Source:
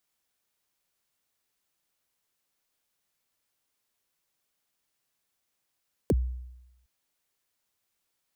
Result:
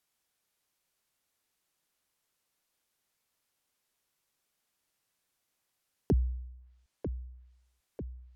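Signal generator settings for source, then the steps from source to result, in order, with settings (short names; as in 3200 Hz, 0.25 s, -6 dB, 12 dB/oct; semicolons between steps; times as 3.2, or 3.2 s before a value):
kick drum length 0.76 s, from 570 Hz, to 62 Hz, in 38 ms, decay 0.94 s, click on, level -18 dB
on a send: dark delay 0.945 s, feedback 58%, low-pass 2300 Hz, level -10 dB; on the sum: treble ducked by the level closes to 350 Hz, closed at -36.5 dBFS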